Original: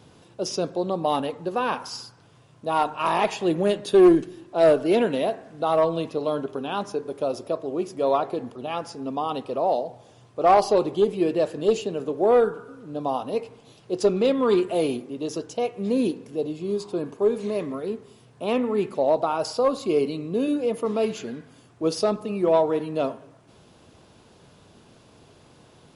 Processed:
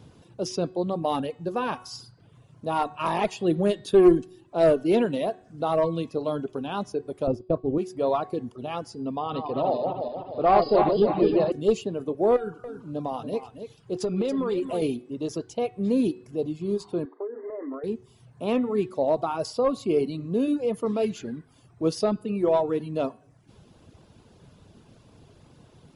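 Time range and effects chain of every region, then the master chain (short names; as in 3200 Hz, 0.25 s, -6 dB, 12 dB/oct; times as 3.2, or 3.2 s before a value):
7.27–7.78 expander -32 dBFS + tilt -3.5 dB/oct
9.18–11.52 regenerating reverse delay 0.151 s, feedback 68%, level -3 dB + brick-wall FIR low-pass 5100 Hz
12.36–14.82 compressor 12:1, threshold -21 dBFS + echo 0.28 s -9 dB
17.05–17.84 brick-wall FIR band-pass 250–2100 Hz + compressor 10:1, threshold -27 dBFS + notches 60/120/180/240/300/360/420 Hz
whole clip: reverb removal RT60 0.65 s; low shelf 250 Hz +10 dB; de-hum 369.6 Hz, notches 13; gain -3.5 dB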